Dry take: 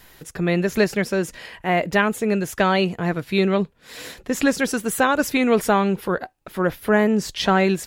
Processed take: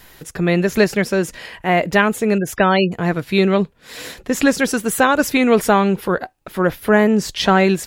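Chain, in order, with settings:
0:02.38–0:02.92: gate on every frequency bin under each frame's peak −25 dB strong
level +4 dB

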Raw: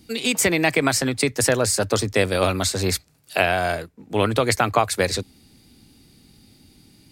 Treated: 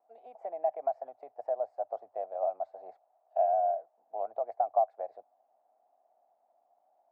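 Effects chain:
in parallel at −9 dB: bit-depth reduction 6 bits, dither triangular
on the sum: flat-topped band-pass 700 Hz, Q 4.6
level −5 dB

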